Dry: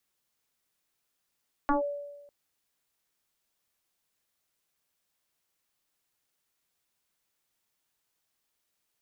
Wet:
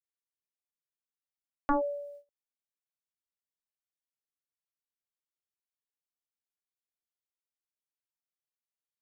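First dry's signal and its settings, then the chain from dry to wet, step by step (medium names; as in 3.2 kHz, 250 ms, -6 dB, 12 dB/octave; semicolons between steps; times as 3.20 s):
FM tone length 0.60 s, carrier 575 Hz, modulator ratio 0.49, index 2.9, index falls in 0.13 s linear, decay 1.12 s, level -20 dB
gate -49 dBFS, range -24 dB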